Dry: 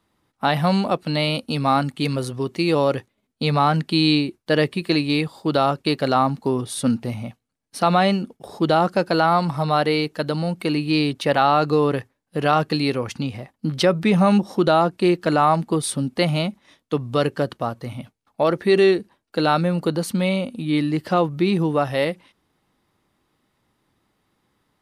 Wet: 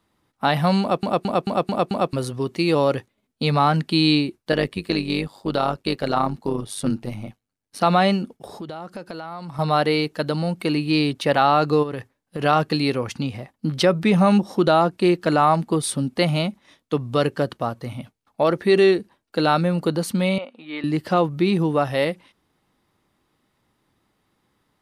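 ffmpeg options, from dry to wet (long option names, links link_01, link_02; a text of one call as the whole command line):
ffmpeg -i in.wav -filter_complex "[0:a]asettb=1/sr,asplit=3[link_01][link_02][link_03];[link_01]atrim=end=4.524[link_04];[link_02]atrim=start=4.52:end=7.81,asetpts=PTS-STARTPTS,afade=type=in:duration=0.004:curve=qsin,afade=type=out:start_time=3.286:duration=0.004:curve=qsin,tremolo=f=100:d=0.71[link_05];[link_03]atrim=start=7.806[link_06];[link_04][link_05]acrossfade=duration=0.004:curve1=hsin:curve2=qsin[link_07];[link_07][link_06]acrossfade=duration=0.004:curve1=qsin:curve2=hsin,asettb=1/sr,asplit=3[link_08][link_09][link_10];[link_08]atrim=end=8.564[link_11];[link_09]atrim=start=8.56:end=9.59,asetpts=PTS-STARTPTS,afade=type=in:duration=0.004:curve=qsin,afade=type=out:start_time=1.026:duration=0.004:curve=qsin,acompressor=threshold=-32dB:ratio=5:attack=3.2:release=140:knee=1:detection=peak[link_12];[link_10]atrim=start=9.586[link_13];[link_11][link_12]acrossfade=duration=0.004:curve1=hsin:curve2=qsin[link_14];[link_14][link_13]acrossfade=duration=0.004:curve1=qsin:curve2=hsin,asplit=3[link_15][link_16][link_17];[link_15]afade=type=out:start_time=11.82:duration=0.02[link_18];[link_16]acompressor=threshold=-23dB:ratio=12:attack=3.2:release=140:knee=1:detection=peak,afade=type=in:start_time=11.82:duration=0.02,afade=type=out:start_time=12.39:duration=0.02[link_19];[link_17]afade=type=in:start_time=12.39:duration=0.02[link_20];[link_18][link_19][link_20]amix=inputs=3:normalize=0,asettb=1/sr,asplit=3[link_21][link_22][link_23];[link_21]atrim=end=20.384[link_24];[link_22]atrim=start=20.38:end=20.84,asetpts=PTS-STARTPTS,afade=type=in:duration=0.004:curve=qsin,afade=type=out:start_time=0.456:duration=0.004:curve=qsin,highpass=620,lowpass=2500[link_25];[link_23]atrim=start=20.836[link_26];[link_24][link_25]acrossfade=duration=0.004:curve1=hsin:curve2=qsin[link_27];[link_27][link_26]acrossfade=duration=0.004:curve1=qsin:curve2=hsin,asplit=7[link_28][link_29][link_30][link_31][link_32][link_33][link_34];[link_28]atrim=end=1.032[link_35];[link_29]atrim=start=0.808:end=1.032[link_36];[link_30]atrim=start=0.808:end=1.032[link_37];[link_31]atrim=start=0.808:end=1.032[link_38];[link_32]atrim=start=0.808:end=1.032[link_39];[link_33]atrim=start=0.808:end=1.032[link_40];[link_34]atrim=start=2.128[link_41];[link_35][link_36]acrossfade=duration=0.004:curve1=hsin:curve2=hsin[link_42];[link_42][link_37]acrossfade=duration=0.004:curve1=hsin:curve2=hsin[link_43];[link_43][link_38]acrossfade=duration=0.004:curve1=hsin:curve2=hsin[link_44];[link_44][link_39]acrossfade=duration=0.004:curve1=hsin:curve2=hsin[link_45];[link_45][link_40]acrossfade=duration=0.004:curve1=hsin:curve2=hsin[link_46];[link_46][link_41]acrossfade=duration=0.004:curve1=hsin:curve2=hsin" out.wav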